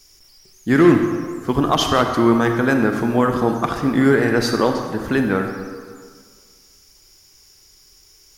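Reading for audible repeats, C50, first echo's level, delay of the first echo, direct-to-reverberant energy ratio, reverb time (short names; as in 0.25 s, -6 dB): none, 5.0 dB, none, none, 4.5 dB, 1.8 s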